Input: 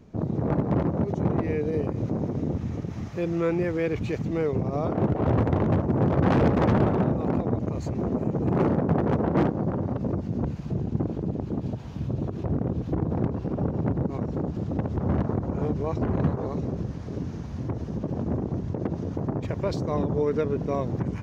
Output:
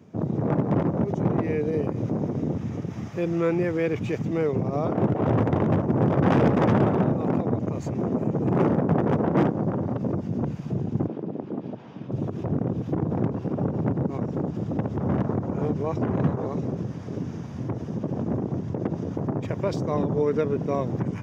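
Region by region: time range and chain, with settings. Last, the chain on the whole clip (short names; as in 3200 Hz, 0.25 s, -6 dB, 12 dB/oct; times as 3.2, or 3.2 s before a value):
11.07–12.12 HPF 230 Hz + air absorption 180 m
whole clip: HPF 100 Hz 24 dB/oct; notch 4200 Hz, Q 7.1; gain +1.5 dB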